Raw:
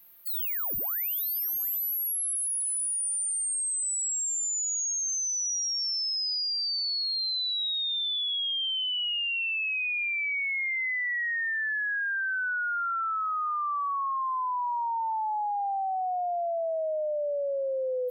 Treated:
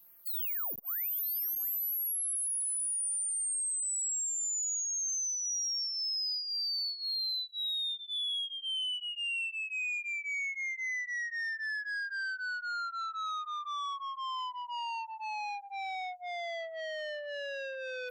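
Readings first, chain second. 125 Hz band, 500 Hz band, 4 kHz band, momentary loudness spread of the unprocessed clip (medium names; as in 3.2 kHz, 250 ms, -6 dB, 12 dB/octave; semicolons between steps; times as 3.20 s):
no reading, under -10 dB, -5.5 dB, 3 LU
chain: LFO notch sine 1.9 Hz 730–4000 Hz; transformer saturation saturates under 1.7 kHz; trim -3.5 dB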